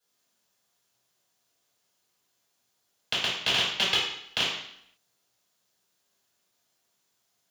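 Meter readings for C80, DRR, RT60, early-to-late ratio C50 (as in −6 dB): 5.5 dB, −10.5 dB, 0.70 s, 2.0 dB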